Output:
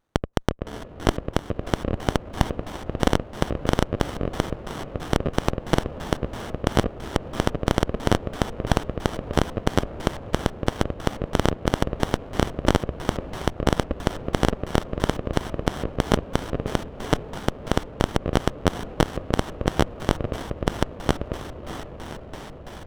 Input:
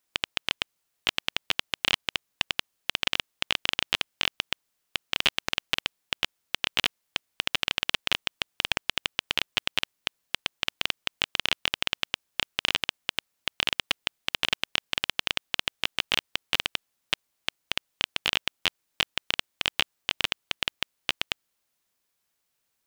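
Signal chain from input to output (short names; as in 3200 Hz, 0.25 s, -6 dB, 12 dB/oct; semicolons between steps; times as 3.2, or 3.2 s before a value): low shelf 270 Hz +10.5 dB; notch 4200 Hz, Q 5.9; on a send: diffused feedback echo 0.586 s, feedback 75%, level -8 dB; on the sum: LFO low-pass square 3 Hz 570–6500 Hz; bell 60 Hz +5.5 dB 1.6 oct; in parallel at +2 dB: limiter -9 dBFS, peak gain reduction 7.5 dB; on the sum: running maximum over 17 samples; gain -3.5 dB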